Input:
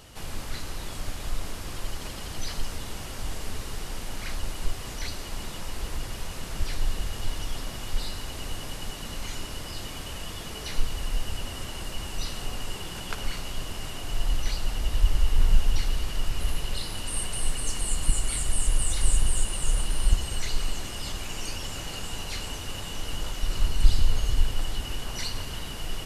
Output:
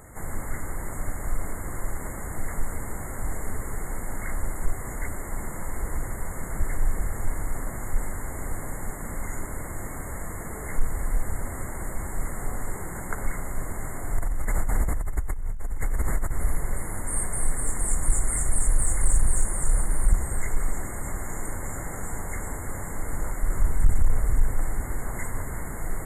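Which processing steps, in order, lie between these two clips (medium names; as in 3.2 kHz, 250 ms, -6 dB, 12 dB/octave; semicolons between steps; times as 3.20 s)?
saturation -12 dBFS, distortion -16 dB; FFT band-reject 2.2–6.7 kHz; 14.18–16.32 s: compressor with a negative ratio -27 dBFS, ratio -1; trim +3.5 dB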